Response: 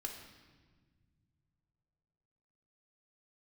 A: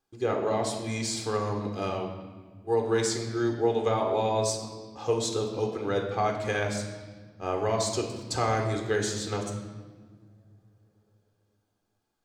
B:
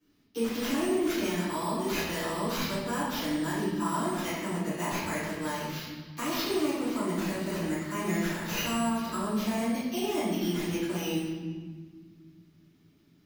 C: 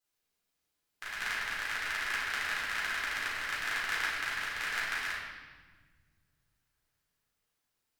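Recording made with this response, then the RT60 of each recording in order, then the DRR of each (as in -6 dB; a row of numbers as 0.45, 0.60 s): A; 1.6, 1.5, 1.5 s; 2.0, -14.5, -7.5 dB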